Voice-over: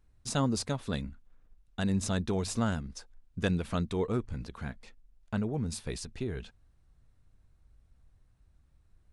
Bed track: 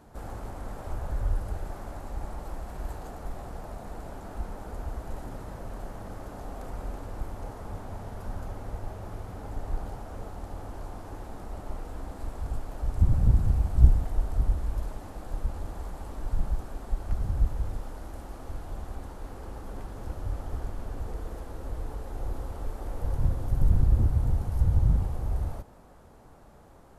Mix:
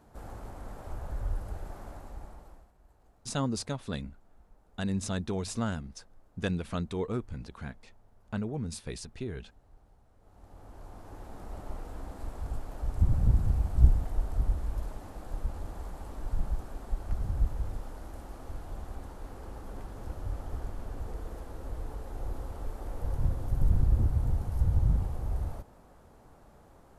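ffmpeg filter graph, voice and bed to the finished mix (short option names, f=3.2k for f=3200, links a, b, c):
-filter_complex "[0:a]adelay=3000,volume=-2dB[a];[1:a]volume=18dB,afade=t=out:st=1.88:d=0.84:silence=0.0891251,afade=t=in:st=10.19:d=1.36:silence=0.0707946[b];[a][b]amix=inputs=2:normalize=0"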